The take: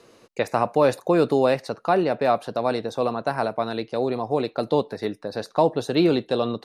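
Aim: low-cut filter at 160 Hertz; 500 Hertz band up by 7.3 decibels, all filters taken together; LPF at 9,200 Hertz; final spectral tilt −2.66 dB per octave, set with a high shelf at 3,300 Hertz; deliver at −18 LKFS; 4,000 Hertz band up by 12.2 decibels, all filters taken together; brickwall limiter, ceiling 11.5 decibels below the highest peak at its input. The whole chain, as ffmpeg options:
ffmpeg -i in.wav -af "highpass=160,lowpass=9200,equalizer=frequency=500:width_type=o:gain=8.5,highshelf=frequency=3300:gain=7.5,equalizer=frequency=4000:width_type=o:gain=8.5,volume=4.5dB,alimiter=limit=-7.5dB:level=0:latency=1" out.wav

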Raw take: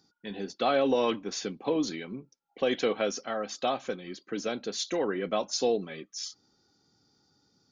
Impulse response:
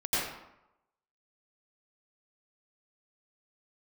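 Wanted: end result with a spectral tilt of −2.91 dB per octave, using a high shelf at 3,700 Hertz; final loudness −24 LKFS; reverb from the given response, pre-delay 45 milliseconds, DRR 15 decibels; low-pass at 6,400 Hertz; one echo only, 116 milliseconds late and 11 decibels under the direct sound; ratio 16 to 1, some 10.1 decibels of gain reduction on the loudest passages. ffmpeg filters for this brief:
-filter_complex "[0:a]lowpass=6400,highshelf=frequency=3700:gain=5,acompressor=threshold=-31dB:ratio=16,aecho=1:1:116:0.282,asplit=2[link_01][link_02];[1:a]atrim=start_sample=2205,adelay=45[link_03];[link_02][link_03]afir=irnorm=-1:irlink=0,volume=-24.5dB[link_04];[link_01][link_04]amix=inputs=2:normalize=0,volume=12.5dB"

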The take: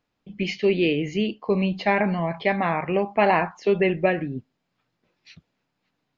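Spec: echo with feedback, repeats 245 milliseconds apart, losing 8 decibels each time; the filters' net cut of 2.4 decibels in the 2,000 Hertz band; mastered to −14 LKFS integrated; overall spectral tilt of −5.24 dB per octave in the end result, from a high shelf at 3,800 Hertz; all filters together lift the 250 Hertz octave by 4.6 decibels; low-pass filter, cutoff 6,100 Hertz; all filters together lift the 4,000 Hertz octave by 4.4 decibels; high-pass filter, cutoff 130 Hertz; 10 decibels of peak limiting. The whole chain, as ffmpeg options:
ffmpeg -i in.wav -af "highpass=130,lowpass=6100,equalizer=frequency=250:width_type=o:gain=8,equalizer=frequency=2000:width_type=o:gain=-7,highshelf=frequency=3800:gain=5,equalizer=frequency=4000:width_type=o:gain=8,alimiter=limit=-16dB:level=0:latency=1,aecho=1:1:245|490|735|980|1225:0.398|0.159|0.0637|0.0255|0.0102,volume=11dB" out.wav

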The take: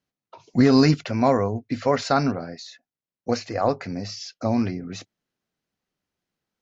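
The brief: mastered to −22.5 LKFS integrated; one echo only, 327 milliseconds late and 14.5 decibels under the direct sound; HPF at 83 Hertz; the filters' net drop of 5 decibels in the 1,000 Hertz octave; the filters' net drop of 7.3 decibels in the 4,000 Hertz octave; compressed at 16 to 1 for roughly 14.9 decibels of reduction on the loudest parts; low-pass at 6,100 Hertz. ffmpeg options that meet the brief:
ffmpeg -i in.wav -af "highpass=83,lowpass=6100,equalizer=frequency=1000:width_type=o:gain=-7,equalizer=frequency=4000:width_type=o:gain=-7.5,acompressor=threshold=-27dB:ratio=16,aecho=1:1:327:0.188,volume=11.5dB" out.wav

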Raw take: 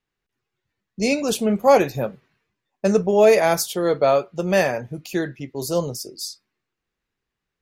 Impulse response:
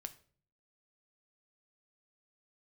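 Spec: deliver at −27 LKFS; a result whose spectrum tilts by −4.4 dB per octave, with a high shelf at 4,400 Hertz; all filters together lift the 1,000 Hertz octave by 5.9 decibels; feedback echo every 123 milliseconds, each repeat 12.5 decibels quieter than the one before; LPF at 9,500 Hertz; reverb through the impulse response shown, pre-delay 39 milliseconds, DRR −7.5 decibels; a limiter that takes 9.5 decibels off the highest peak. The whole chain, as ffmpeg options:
-filter_complex "[0:a]lowpass=9500,equalizer=frequency=1000:width_type=o:gain=8,highshelf=frequency=4400:gain=3.5,alimiter=limit=-10dB:level=0:latency=1,aecho=1:1:123|246|369:0.237|0.0569|0.0137,asplit=2[link_01][link_02];[1:a]atrim=start_sample=2205,adelay=39[link_03];[link_02][link_03]afir=irnorm=-1:irlink=0,volume=11.5dB[link_04];[link_01][link_04]amix=inputs=2:normalize=0,volume=-13.5dB"

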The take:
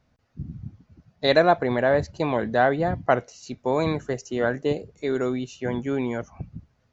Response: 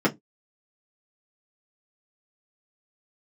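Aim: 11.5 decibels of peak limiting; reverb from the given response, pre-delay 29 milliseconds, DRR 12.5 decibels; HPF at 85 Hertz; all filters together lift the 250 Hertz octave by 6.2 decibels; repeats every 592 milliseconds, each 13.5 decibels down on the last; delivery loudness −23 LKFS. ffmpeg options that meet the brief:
-filter_complex "[0:a]highpass=85,equalizer=frequency=250:width_type=o:gain=7.5,alimiter=limit=-15dB:level=0:latency=1,aecho=1:1:592|1184:0.211|0.0444,asplit=2[link_01][link_02];[1:a]atrim=start_sample=2205,adelay=29[link_03];[link_02][link_03]afir=irnorm=-1:irlink=0,volume=-27.5dB[link_04];[link_01][link_04]amix=inputs=2:normalize=0,volume=2dB"

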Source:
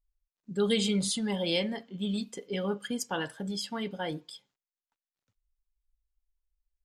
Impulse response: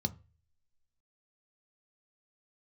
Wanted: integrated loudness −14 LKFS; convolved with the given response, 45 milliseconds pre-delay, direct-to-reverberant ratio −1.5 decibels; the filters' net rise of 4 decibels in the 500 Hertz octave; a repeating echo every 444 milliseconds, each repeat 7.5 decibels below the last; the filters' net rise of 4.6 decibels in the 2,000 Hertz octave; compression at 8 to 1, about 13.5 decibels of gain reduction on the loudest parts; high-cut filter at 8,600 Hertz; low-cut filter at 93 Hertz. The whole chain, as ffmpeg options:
-filter_complex "[0:a]highpass=93,lowpass=8600,equalizer=frequency=500:width_type=o:gain=4.5,equalizer=frequency=2000:width_type=o:gain=5.5,acompressor=threshold=-34dB:ratio=8,aecho=1:1:444|888|1332|1776|2220:0.422|0.177|0.0744|0.0312|0.0131,asplit=2[link_01][link_02];[1:a]atrim=start_sample=2205,adelay=45[link_03];[link_02][link_03]afir=irnorm=-1:irlink=0,volume=-0.5dB[link_04];[link_01][link_04]amix=inputs=2:normalize=0,volume=14.5dB"

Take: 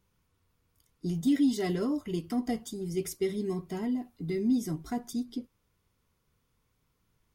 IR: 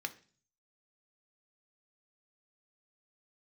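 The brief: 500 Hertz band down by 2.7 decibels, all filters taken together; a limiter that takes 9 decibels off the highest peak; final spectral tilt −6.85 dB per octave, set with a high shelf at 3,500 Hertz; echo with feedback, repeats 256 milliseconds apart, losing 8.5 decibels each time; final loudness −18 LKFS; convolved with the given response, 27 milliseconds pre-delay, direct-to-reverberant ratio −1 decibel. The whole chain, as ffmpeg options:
-filter_complex "[0:a]equalizer=frequency=500:width_type=o:gain=-4,highshelf=frequency=3500:gain=-6,alimiter=level_in=3.5dB:limit=-24dB:level=0:latency=1,volume=-3.5dB,aecho=1:1:256|512|768|1024:0.376|0.143|0.0543|0.0206,asplit=2[link_01][link_02];[1:a]atrim=start_sample=2205,adelay=27[link_03];[link_02][link_03]afir=irnorm=-1:irlink=0,volume=0dB[link_04];[link_01][link_04]amix=inputs=2:normalize=0,volume=15.5dB"

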